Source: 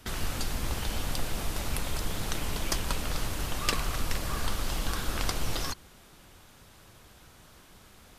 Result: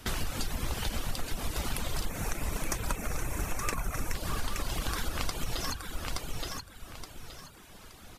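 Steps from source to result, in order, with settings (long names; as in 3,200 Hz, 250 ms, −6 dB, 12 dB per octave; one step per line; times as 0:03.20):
gain on a spectral selection 0:02.09–0:04.14, 2,700–5,400 Hz −11 dB
repeating echo 872 ms, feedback 29%, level −7 dB
reverb reduction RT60 0.78 s
downward compressor, threshold −31 dBFS, peak gain reduction 8.5 dB
level +4 dB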